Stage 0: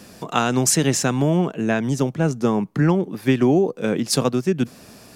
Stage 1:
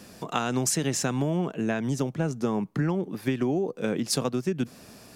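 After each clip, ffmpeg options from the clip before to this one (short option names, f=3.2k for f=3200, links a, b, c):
-af "acompressor=threshold=-18dB:ratio=6,volume=-4dB"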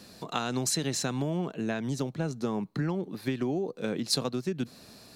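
-af "equalizer=f=4.1k:t=o:w=0.22:g=14,volume=-4dB"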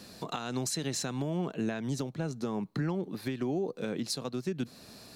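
-af "alimiter=limit=-23.5dB:level=0:latency=1:release=391,volume=1dB"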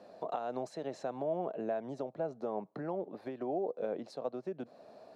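-af "bandpass=f=630:t=q:w=3.3:csg=0,volume=7.5dB"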